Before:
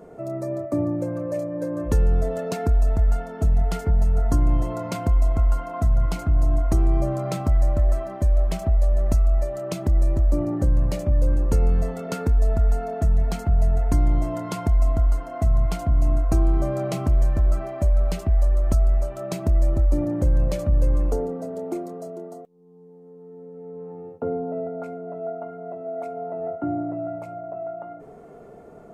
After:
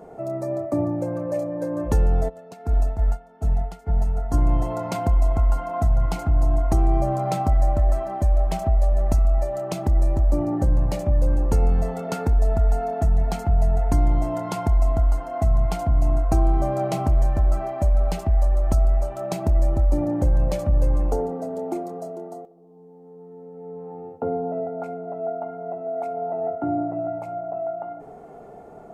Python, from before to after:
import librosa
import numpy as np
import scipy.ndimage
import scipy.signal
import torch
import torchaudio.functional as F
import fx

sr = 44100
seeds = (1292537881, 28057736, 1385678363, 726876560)

y = fx.peak_eq(x, sr, hz=800.0, db=10.0, octaves=0.37)
y = fx.echo_tape(y, sr, ms=64, feedback_pct=81, wet_db=-17.5, lp_hz=1900.0, drive_db=8.0, wow_cents=14)
y = fx.upward_expand(y, sr, threshold_db=-26.0, expansion=2.5, at=(2.28, 4.33), fade=0.02)